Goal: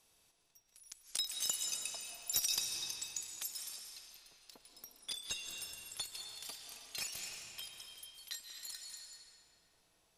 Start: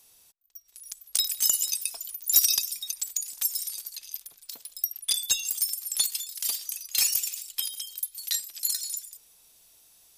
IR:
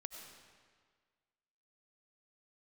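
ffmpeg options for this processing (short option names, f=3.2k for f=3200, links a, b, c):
-filter_complex "[0:a]asetnsamples=n=441:p=0,asendcmd='3.76 lowpass f 1400',lowpass=f=3k:p=1[a];[1:a]atrim=start_sample=2205,asetrate=23814,aresample=44100[b];[a][b]afir=irnorm=-1:irlink=0,volume=-2.5dB"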